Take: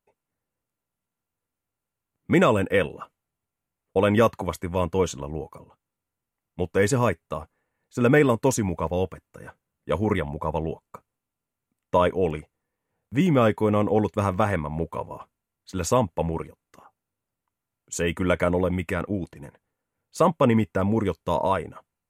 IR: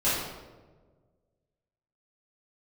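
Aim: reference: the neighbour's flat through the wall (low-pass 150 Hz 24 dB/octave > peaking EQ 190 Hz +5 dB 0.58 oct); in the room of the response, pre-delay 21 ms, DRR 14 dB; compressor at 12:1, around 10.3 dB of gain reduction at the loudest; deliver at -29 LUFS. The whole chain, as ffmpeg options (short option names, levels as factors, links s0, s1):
-filter_complex "[0:a]acompressor=threshold=0.0631:ratio=12,asplit=2[s0][s1];[1:a]atrim=start_sample=2205,adelay=21[s2];[s1][s2]afir=irnorm=-1:irlink=0,volume=0.0473[s3];[s0][s3]amix=inputs=2:normalize=0,lowpass=f=150:w=0.5412,lowpass=f=150:w=1.3066,equalizer=f=190:t=o:w=0.58:g=5,volume=2.99"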